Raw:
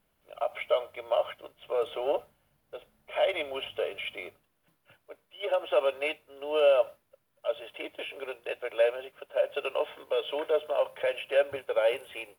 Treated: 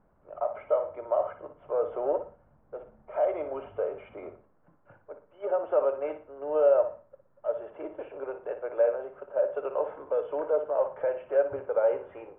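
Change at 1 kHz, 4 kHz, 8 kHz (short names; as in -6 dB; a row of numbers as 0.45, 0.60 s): +0.5 dB, under -25 dB, n/a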